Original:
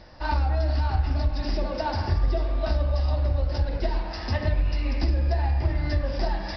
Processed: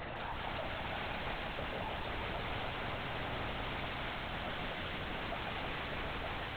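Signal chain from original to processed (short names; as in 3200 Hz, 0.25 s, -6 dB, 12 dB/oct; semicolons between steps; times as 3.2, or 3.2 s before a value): HPF 110 Hz 24 dB/oct; low shelf 410 Hz -5.5 dB; notches 50/100/150/200/250 Hz; in parallel at -1 dB: limiter -28 dBFS, peak gain reduction 10.5 dB; on the sum: tube stage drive 35 dB, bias 0.6; wrapped overs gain 43 dB; air absorption 160 m; LPC vocoder at 8 kHz whisper; lo-fi delay 0.161 s, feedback 80%, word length 13-bit, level -7 dB; gain +10.5 dB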